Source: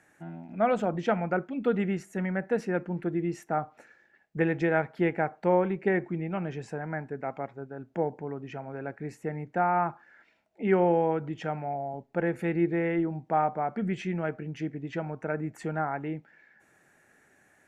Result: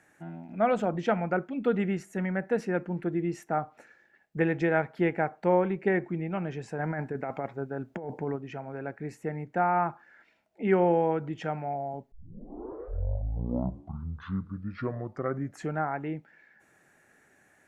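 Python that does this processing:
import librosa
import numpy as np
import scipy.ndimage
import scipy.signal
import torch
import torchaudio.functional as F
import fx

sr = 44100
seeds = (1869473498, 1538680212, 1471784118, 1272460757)

y = fx.over_compress(x, sr, threshold_db=-35.0, ratio=-1.0, at=(6.78, 8.35), fade=0.02)
y = fx.edit(y, sr, fx.tape_start(start_s=12.12, length_s=3.7), tone=tone)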